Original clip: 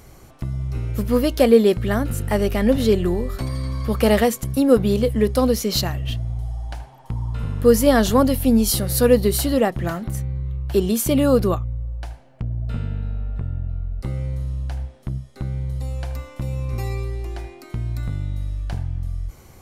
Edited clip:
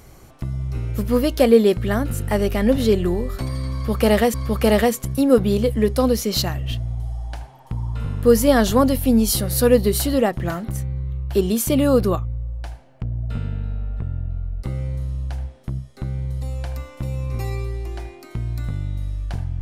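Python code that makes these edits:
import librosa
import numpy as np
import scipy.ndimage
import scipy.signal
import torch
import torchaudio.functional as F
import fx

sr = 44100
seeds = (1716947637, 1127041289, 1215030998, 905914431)

y = fx.edit(x, sr, fx.repeat(start_s=3.73, length_s=0.61, count=2), tone=tone)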